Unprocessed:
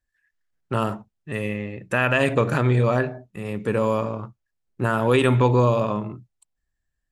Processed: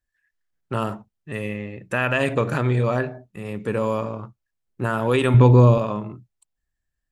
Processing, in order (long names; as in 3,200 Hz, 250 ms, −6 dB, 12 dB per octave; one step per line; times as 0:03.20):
0:05.34–0:05.78: low-shelf EQ 350 Hz +10.5 dB
level −1.5 dB